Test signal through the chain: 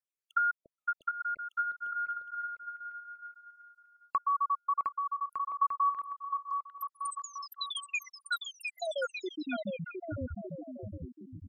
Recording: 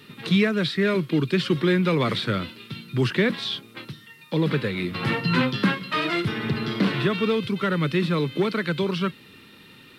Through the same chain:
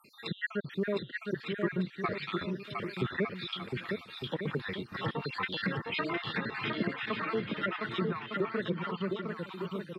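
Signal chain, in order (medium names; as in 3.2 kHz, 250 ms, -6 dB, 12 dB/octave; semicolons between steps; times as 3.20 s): random holes in the spectrogram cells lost 66%; low-pass that closes with the level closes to 1 kHz, closed at -23 dBFS; bass shelf 420 Hz -7.5 dB; bouncing-ball echo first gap 710 ms, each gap 0.7×, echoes 5; dynamic bell 1.9 kHz, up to +4 dB, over -45 dBFS, Q 2.2; trim -3 dB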